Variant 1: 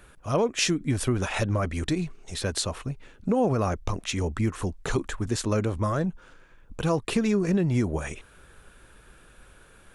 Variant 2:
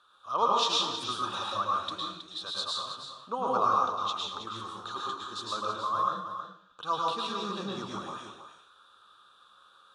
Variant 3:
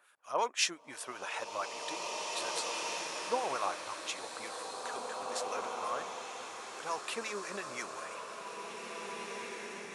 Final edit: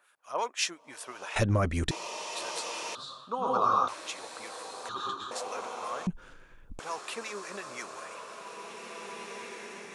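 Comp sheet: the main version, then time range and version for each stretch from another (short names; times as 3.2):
3
1.36–1.91 from 1
2.95–3.88 from 2
4.89–5.31 from 2
6.07–6.79 from 1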